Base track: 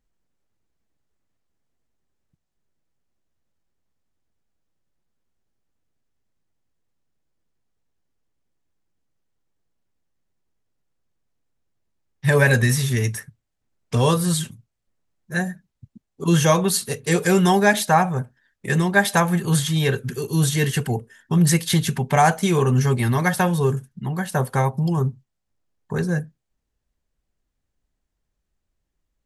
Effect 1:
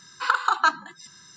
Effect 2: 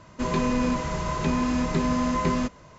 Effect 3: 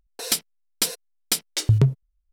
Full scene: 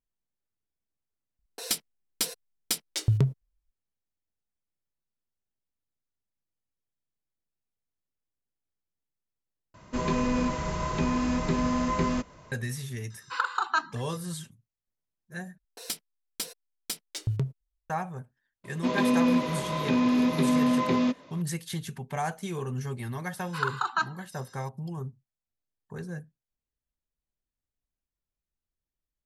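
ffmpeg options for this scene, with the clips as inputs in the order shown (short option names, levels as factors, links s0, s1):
-filter_complex "[3:a]asplit=2[s0][s1];[2:a]asplit=2[s2][s3];[1:a]asplit=2[s4][s5];[0:a]volume=0.178[s6];[s3]highpass=190,equalizer=f=260:t=q:w=4:g=8,equalizer=f=540:t=q:w=4:g=5,equalizer=f=1500:t=q:w=4:g=-3,equalizer=f=2400:t=q:w=4:g=4,equalizer=f=3600:t=q:w=4:g=8,lowpass=f=5900:w=0.5412,lowpass=f=5900:w=1.3066[s7];[s6]asplit=3[s8][s9][s10];[s8]atrim=end=9.744[s11];[s2]atrim=end=2.78,asetpts=PTS-STARTPTS,volume=0.75[s12];[s9]atrim=start=12.516:end=15.584[s13];[s1]atrim=end=2.32,asetpts=PTS-STARTPTS,volume=0.266[s14];[s10]atrim=start=17.896[s15];[s0]atrim=end=2.32,asetpts=PTS-STARTPTS,volume=0.501,afade=t=in:d=0.004:c=hsin,afade=t=out:st=2.316:d=0.004:c=hsin,adelay=1390[s16];[s4]atrim=end=1.36,asetpts=PTS-STARTPTS,volume=0.473,afade=t=in:d=0.004:c=hsin,afade=t=out:st=1.356:d=0.004:c=hsin,adelay=13100[s17];[s7]atrim=end=2.78,asetpts=PTS-STARTPTS,volume=0.708,afade=t=in:d=0.004:c=hsin,afade=t=out:st=2.776:d=0.004:c=hsin,adelay=18640[s18];[s5]atrim=end=1.36,asetpts=PTS-STARTPTS,volume=0.422,afade=t=in:d=0.004:c=hsin,afade=t=out:st=1.356:d=0.004:c=hsin,adelay=23330[s19];[s11][s12]acrossfade=d=0.004:c1=hsin:c2=hsin[s20];[s20][s13]acrossfade=d=0.004:c1=hsin:c2=hsin[s21];[s21][s14]acrossfade=d=0.004:c1=hsin:c2=hsin[s22];[s22][s15]acrossfade=d=0.004:c1=hsin:c2=hsin[s23];[s23][s16][s17][s18][s19]amix=inputs=5:normalize=0"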